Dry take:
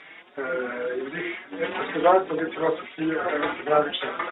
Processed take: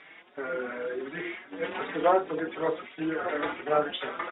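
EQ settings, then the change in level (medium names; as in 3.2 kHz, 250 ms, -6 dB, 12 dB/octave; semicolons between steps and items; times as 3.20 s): distance through air 65 m; -4.5 dB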